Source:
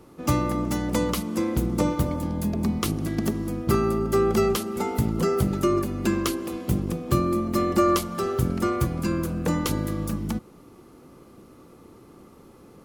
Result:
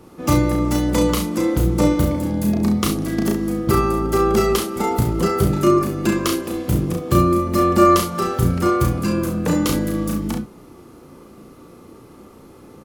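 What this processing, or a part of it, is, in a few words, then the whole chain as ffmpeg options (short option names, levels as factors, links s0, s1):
slapback doubling: -filter_complex "[0:a]asplit=3[s0][s1][s2];[s1]adelay=34,volume=0.708[s3];[s2]adelay=67,volume=0.376[s4];[s0][s3][s4]amix=inputs=3:normalize=0,volume=1.58"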